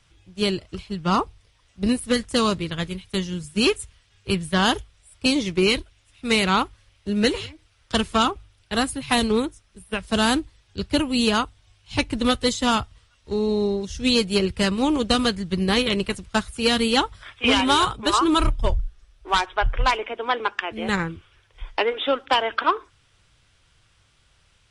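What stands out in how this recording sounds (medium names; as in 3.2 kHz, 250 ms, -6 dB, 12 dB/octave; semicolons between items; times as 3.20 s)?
noise floor -61 dBFS; spectral tilt -4.0 dB/octave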